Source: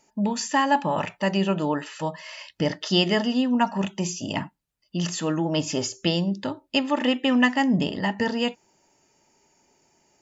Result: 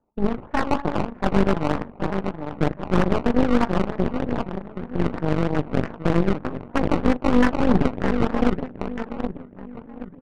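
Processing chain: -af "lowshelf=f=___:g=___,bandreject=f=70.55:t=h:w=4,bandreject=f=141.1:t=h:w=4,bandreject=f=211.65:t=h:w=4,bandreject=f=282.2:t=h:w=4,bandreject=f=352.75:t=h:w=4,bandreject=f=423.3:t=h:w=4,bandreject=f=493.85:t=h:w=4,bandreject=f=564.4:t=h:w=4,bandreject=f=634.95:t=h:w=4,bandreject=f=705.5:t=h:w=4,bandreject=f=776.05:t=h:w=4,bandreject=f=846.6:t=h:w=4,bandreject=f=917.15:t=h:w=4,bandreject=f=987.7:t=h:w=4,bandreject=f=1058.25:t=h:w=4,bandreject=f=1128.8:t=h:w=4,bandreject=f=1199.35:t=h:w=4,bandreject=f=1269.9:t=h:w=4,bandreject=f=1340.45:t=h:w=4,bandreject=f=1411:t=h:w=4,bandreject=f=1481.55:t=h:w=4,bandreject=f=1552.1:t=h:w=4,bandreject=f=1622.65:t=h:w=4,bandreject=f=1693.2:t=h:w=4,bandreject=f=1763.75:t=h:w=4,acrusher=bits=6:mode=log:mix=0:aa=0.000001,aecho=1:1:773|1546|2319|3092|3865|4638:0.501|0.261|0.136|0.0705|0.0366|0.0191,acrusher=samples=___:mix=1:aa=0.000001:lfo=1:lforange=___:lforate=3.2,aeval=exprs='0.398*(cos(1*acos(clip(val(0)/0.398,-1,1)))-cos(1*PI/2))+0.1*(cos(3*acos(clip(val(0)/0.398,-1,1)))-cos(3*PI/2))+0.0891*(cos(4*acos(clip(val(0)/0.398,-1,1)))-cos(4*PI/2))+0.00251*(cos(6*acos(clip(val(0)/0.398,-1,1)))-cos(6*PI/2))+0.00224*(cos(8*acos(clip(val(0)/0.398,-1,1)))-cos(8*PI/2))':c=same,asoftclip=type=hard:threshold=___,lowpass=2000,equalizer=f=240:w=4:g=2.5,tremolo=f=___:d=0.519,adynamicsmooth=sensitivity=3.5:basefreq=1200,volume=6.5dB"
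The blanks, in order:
180, 7.5, 18, 18, -12.5dB, 49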